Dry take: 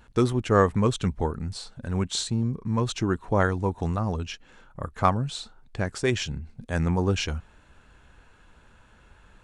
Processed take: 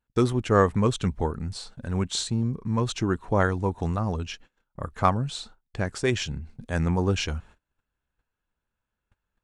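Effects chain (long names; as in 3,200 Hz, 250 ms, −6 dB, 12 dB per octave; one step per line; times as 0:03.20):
noise gate −47 dBFS, range −29 dB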